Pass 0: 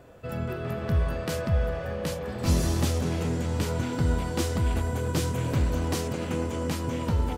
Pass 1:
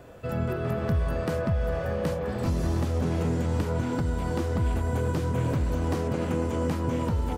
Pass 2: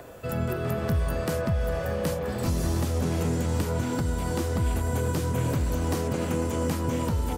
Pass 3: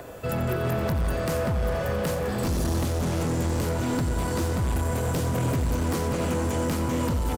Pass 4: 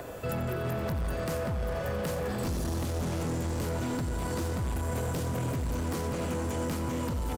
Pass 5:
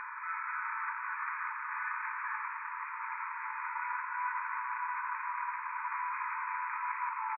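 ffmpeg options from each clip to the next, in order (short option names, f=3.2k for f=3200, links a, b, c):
-filter_complex "[0:a]acrossover=split=1800|4700[a][b][c];[a]acompressor=threshold=-24dB:ratio=4[d];[b]acompressor=threshold=-55dB:ratio=4[e];[c]acompressor=threshold=-55dB:ratio=4[f];[d][e][f]amix=inputs=3:normalize=0,alimiter=limit=-20.5dB:level=0:latency=1:release=217,volume=3.5dB"
-filter_complex "[0:a]crystalizer=i=2:c=0,acrossover=split=300|1800[a][b][c];[b]acompressor=mode=upward:threshold=-41dB:ratio=2.5[d];[a][d][c]amix=inputs=3:normalize=0"
-filter_complex "[0:a]asoftclip=type=hard:threshold=-26dB,asplit=2[a][b];[b]aecho=0:1:88|176|264|352|440|528|616:0.266|0.154|0.0895|0.0519|0.0301|0.0175|0.0101[c];[a][c]amix=inputs=2:normalize=0,volume=3.5dB"
-af "alimiter=level_in=2dB:limit=-24dB:level=0:latency=1,volume=-2dB"
-filter_complex "[0:a]asplit=2[a][b];[b]highpass=f=720:p=1,volume=16dB,asoftclip=type=tanh:threshold=-25.5dB[c];[a][c]amix=inputs=2:normalize=0,lowpass=f=1.8k:p=1,volume=-6dB,afftfilt=real='re*between(b*sr/4096,870,2500)':imag='im*between(b*sr/4096,870,2500)':win_size=4096:overlap=0.75,asplit=8[d][e][f][g][h][i][j][k];[e]adelay=157,afreqshift=57,volume=-8.5dB[l];[f]adelay=314,afreqshift=114,volume=-13.5dB[m];[g]adelay=471,afreqshift=171,volume=-18.6dB[n];[h]adelay=628,afreqshift=228,volume=-23.6dB[o];[i]adelay=785,afreqshift=285,volume=-28.6dB[p];[j]adelay=942,afreqshift=342,volume=-33.7dB[q];[k]adelay=1099,afreqshift=399,volume=-38.7dB[r];[d][l][m][n][o][p][q][r]amix=inputs=8:normalize=0,volume=3dB"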